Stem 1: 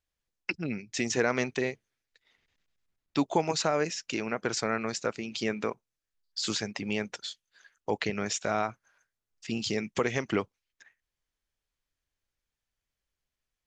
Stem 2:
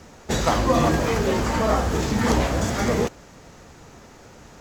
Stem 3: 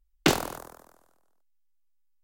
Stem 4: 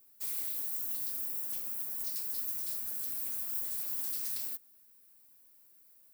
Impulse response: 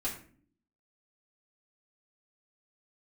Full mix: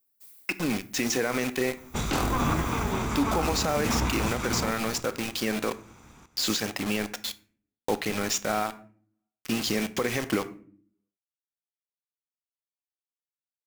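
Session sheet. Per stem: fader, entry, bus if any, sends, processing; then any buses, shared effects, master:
+3.0 dB, 0.00 s, send -12.5 dB, no echo send, bit crusher 6-bit
-5.0 dB, 1.65 s, no send, echo send -11.5 dB, comb filter that takes the minimum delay 0.84 ms; peaking EQ 4.7 kHz -6.5 dB 0.29 oct
-5.0 dB, 1.85 s, send -7.5 dB, no echo send, none
-11.0 dB, 0.00 s, no send, no echo send, auto duck -11 dB, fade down 0.30 s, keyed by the first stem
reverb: on, RT60 0.50 s, pre-delay 3 ms
echo: delay 283 ms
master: peak limiter -15 dBFS, peak gain reduction 8.5 dB

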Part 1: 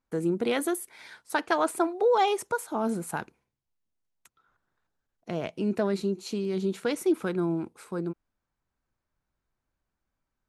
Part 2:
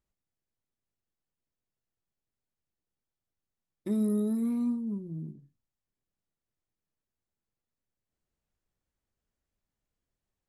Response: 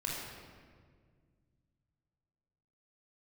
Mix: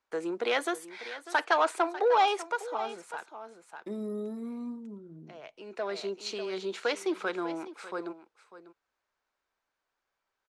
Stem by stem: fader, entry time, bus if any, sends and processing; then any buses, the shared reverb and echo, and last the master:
-2.0 dB, 0.00 s, no send, echo send -15 dB, overdrive pedal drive 12 dB, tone 6.4 kHz, clips at -11.5 dBFS; auto duck -15 dB, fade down 1.70 s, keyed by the second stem
0.0 dB, 0.00 s, no send, no echo send, tilt shelf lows +3.5 dB, about 720 Hz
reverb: none
echo: delay 596 ms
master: three-band isolator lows -18 dB, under 360 Hz, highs -22 dB, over 7.7 kHz

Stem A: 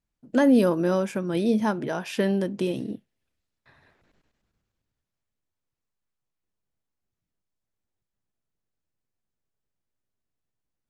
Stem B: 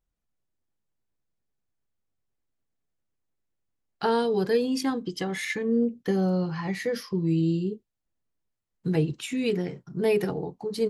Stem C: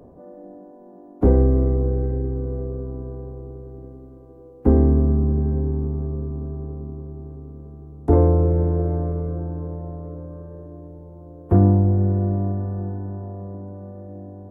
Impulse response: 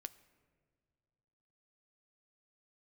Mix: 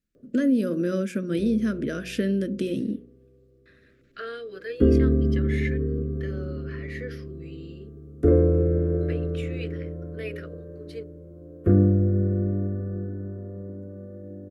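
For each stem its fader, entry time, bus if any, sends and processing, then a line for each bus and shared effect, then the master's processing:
+0.5 dB, 0.00 s, no send, peaking EQ 240 Hz +7.5 dB 0.8 oct; compression 2.5:1, threshold -22 dBFS, peak gain reduction 9.5 dB
-1.5 dB, 0.15 s, no send, three-band isolator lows -23 dB, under 570 Hz, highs -15 dB, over 2.9 kHz
+0.5 dB, 0.15 s, no send, bass shelf 140 Hz -6 dB; auto duck -21 dB, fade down 0.40 s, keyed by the first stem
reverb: none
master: Chebyshev band-stop 530–1400 Hz, order 2; de-hum 60.28 Hz, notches 17

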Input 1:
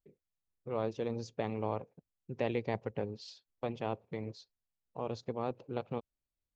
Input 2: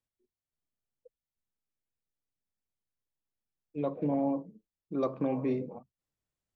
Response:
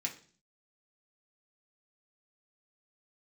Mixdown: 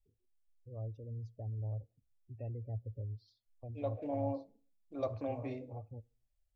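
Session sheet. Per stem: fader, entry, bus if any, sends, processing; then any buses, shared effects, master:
-6.0 dB, 0.00 s, send -18.5 dB, peaking EQ 780 Hz -10.5 dB 2.8 oct; spectral gate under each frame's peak -15 dB strong; tilt EQ -4 dB/octave
-2.0 dB, 0.00 s, send -10 dB, none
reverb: on, RT60 0.45 s, pre-delay 3 ms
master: FFT filter 110 Hz 0 dB, 170 Hz -25 dB, 260 Hz -11 dB, 400 Hz -12 dB, 660 Hz +2 dB, 1 kHz -9 dB, 2.8 kHz -4 dB

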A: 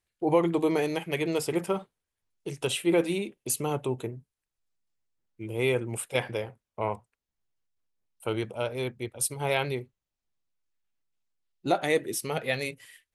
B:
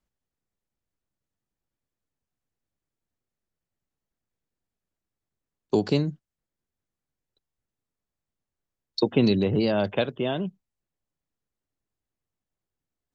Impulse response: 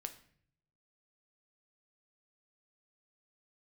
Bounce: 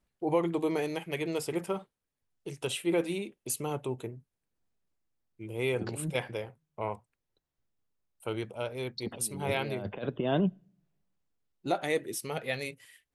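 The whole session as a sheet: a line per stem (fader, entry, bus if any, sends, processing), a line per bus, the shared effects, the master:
-4.5 dB, 0.00 s, no send, none
-1.5 dB, 0.00 s, send -17 dB, low-pass 2.1 kHz 6 dB/octave; compressor with a negative ratio -28 dBFS, ratio -0.5; auto duck -8 dB, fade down 0.75 s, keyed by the first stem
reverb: on, RT60 0.60 s, pre-delay 7 ms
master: none

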